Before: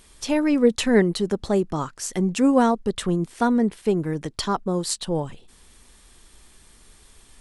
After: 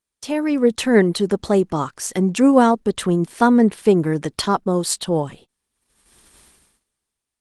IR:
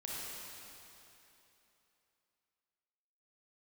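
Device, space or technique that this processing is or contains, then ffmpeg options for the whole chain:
video call: -af "highpass=frequency=120:poles=1,dynaudnorm=framelen=240:gausssize=7:maxgain=11.5dB,agate=range=-30dB:threshold=-42dB:ratio=16:detection=peak" -ar 48000 -c:a libopus -b:a 24k

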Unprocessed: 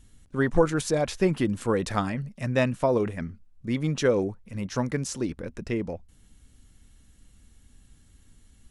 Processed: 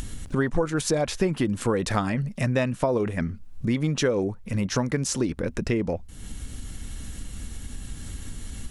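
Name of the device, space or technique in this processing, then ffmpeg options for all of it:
upward and downward compression: -af "acompressor=mode=upward:threshold=-31dB:ratio=2.5,acompressor=threshold=-30dB:ratio=4,volume=8.5dB"

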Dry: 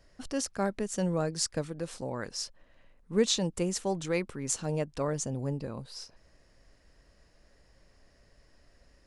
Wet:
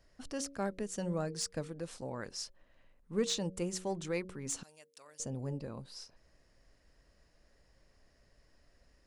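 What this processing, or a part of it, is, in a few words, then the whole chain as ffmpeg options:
saturation between pre-emphasis and de-emphasis: -filter_complex "[0:a]highshelf=frequency=4800:gain=10.5,asoftclip=type=tanh:threshold=-15dB,highshelf=frequency=4800:gain=-10.5,bandreject=frequency=92.79:width_type=h:width=4,bandreject=frequency=185.58:width_type=h:width=4,bandreject=frequency=278.37:width_type=h:width=4,bandreject=frequency=371.16:width_type=h:width=4,bandreject=frequency=463.95:width_type=h:width=4,bandreject=frequency=556.74:width_type=h:width=4,asettb=1/sr,asplit=3[link_01][link_02][link_03];[link_01]atrim=end=4.634[link_04];[link_02]atrim=start=4.63:end=5.2,asetpts=PTS-STARTPTS,afade=type=in:duration=0.004:curve=qsin,afade=type=out:start_time=0.566:duration=0.004:curve=qsin,aderivative[link_05];[link_03]atrim=start=5.196[link_06];[link_04][link_05]acrossfade=duration=0.004:curve1=hsin:curve2=qsin[link_07];[link_07][link_06]acrossfade=duration=0.004:curve1=qsin:curve2=hsin,volume=-5dB"

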